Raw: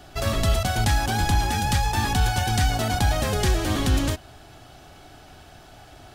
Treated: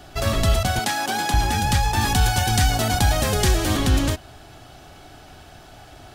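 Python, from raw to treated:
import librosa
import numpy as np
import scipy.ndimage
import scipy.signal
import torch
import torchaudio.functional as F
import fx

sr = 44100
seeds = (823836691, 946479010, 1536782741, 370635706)

y = fx.bessel_highpass(x, sr, hz=280.0, order=4, at=(0.79, 1.34))
y = fx.high_shelf(y, sr, hz=4900.0, db=5.0, at=(2.01, 3.77))
y = y * librosa.db_to_amplitude(2.5)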